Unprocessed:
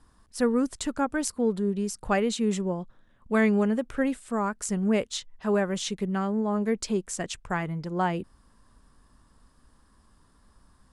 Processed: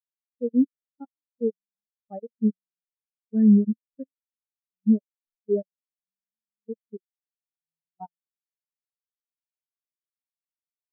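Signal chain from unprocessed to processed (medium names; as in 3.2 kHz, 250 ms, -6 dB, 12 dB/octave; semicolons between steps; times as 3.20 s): boxcar filter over 6 samples; level held to a coarse grid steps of 24 dB; spectral contrast expander 4:1; trim +5.5 dB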